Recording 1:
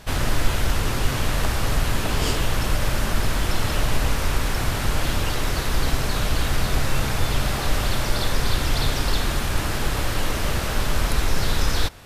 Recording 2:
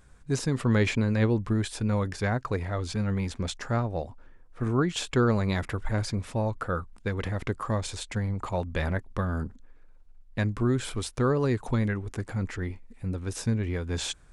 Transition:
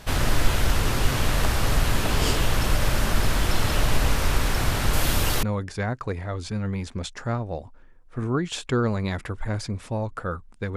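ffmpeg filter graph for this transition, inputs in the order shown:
ffmpeg -i cue0.wav -i cue1.wav -filter_complex "[0:a]asettb=1/sr,asplit=3[link_01][link_02][link_03];[link_01]atrim=end=4.934[link_04];[link_02]atrim=start=4.93:end=5.43,asetpts=PTS-STARTPTS,afade=type=in:duration=0.004:curve=qsin,afade=type=out:start_time=0.496:duration=0.004:curve=qsin,highshelf=frequency=8600:gain=10[link_05];[link_03]atrim=start=5.426[link_06];[link_04][link_05]acrossfade=duration=0.004:curve1=hsin:curve2=qsin[link_07];[link_07][link_06]acrossfade=duration=0.004:curve1=qsin:curve2=hsin,apad=whole_dur=10.76,atrim=end=10.76,atrim=end=5.432[link_08];[1:a]atrim=start=1.868:end=7.2[link_09];[link_08][link_09]acrossfade=duration=0.004:curve1=hsin:curve2=hsin" out.wav

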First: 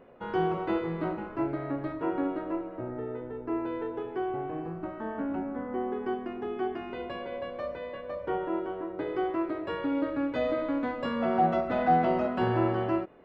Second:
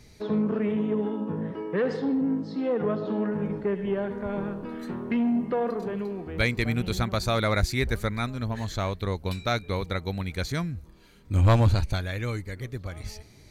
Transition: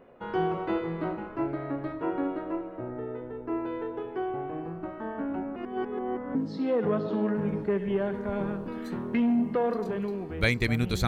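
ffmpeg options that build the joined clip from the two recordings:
ffmpeg -i cue0.wav -i cue1.wav -filter_complex "[0:a]apad=whole_dur=11.07,atrim=end=11.07,asplit=2[link_01][link_02];[link_01]atrim=end=5.562[link_03];[link_02]atrim=start=5.558:end=6.352,asetpts=PTS-STARTPTS,areverse[link_04];[1:a]atrim=start=2.318:end=7.04[link_05];[link_03][link_04]acrossfade=duration=0.004:curve1=hsin:curve2=hsin[link_06];[link_06][link_05]acrossfade=duration=0.004:curve1=hsin:curve2=hsin" out.wav

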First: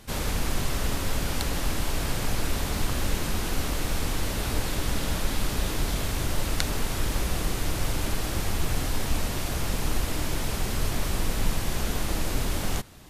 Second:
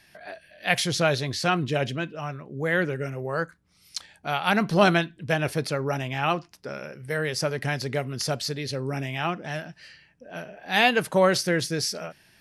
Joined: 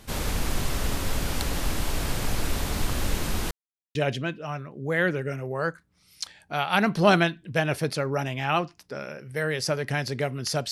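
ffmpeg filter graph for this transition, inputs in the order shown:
ffmpeg -i cue0.wav -i cue1.wav -filter_complex "[0:a]apad=whole_dur=10.71,atrim=end=10.71,asplit=2[link_01][link_02];[link_01]atrim=end=3.51,asetpts=PTS-STARTPTS,afade=type=out:start_time=3.506:duration=0.004:curve=hsin[link_03];[link_02]atrim=start=3.51:end=3.95,asetpts=PTS-STARTPTS,volume=0[link_04];[1:a]atrim=start=1.69:end=8.45,asetpts=PTS-STARTPTS,afade=type=in:duration=0.004:curve=hsin[link_05];[link_03][link_04][link_05]concat=n=3:v=0:a=1" out.wav

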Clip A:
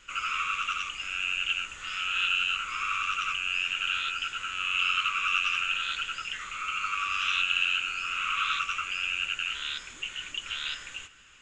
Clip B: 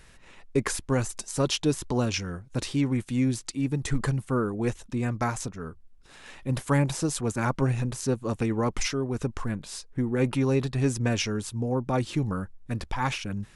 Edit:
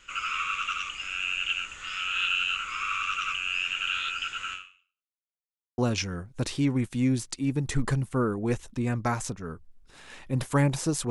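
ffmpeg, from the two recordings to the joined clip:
ffmpeg -i cue0.wav -i cue1.wav -filter_complex "[0:a]apad=whole_dur=11.1,atrim=end=11.1,asplit=2[link_01][link_02];[link_01]atrim=end=5.17,asetpts=PTS-STARTPTS,afade=type=out:start_time=4.53:duration=0.64:curve=exp[link_03];[link_02]atrim=start=5.17:end=5.78,asetpts=PTS-STARTPTS,volume=0[link_04];[1:a]atrim=start=1.94:end=7.26,asetpts=PTS-STARTPTS,afade=type=in:duration=0.004:curve=hsin[link_05];[link_03][link_04][link_05]concat=n=3:v=0:a=1" out.wav

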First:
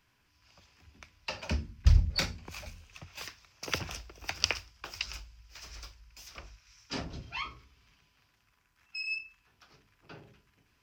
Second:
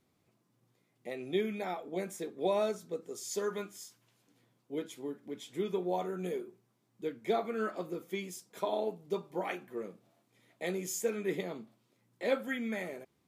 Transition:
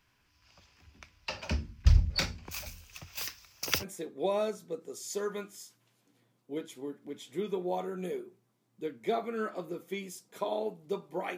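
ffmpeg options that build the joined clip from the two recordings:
ffmpeg -i cue0.wav -i cue1.wav -filter_complex "[0:a]asettb=1/sr,asplit=3[link_01][link_02][link_03];[link_01]atrim=end=2.514[link_04];[link_02]atrim=start=2.51:end=3.85,asetpts=PTS-STARTPTS,afade=type=in:duration=0.004:curve=qsin,afade=type=out:start_time=1.336:duration=0.004:curve=qsin,aemphasis=mode=production:type=50fm[link_05];[link_03]atrim=start=3.846[link_06];[link_04][link_05]acrossfade=duration=0.004:curve1=hsin:curve2=qsin[link_07];[link_07][link_06]acrossfade=duration=0.004:curve1=qsin:curve2=hsin,apad=whole_dur=11.37,atrim=end=11.37,atrim=end=3.85,asetpts=PTS-STARTPTS[link_08];[1:a]atrim=start=2:end=9.58,asetpts=PTS-STARTPTS[link_09];[link_08][link_09]acrossfade=duration=0.06:curve1=tri:curve2=tri" out.wav

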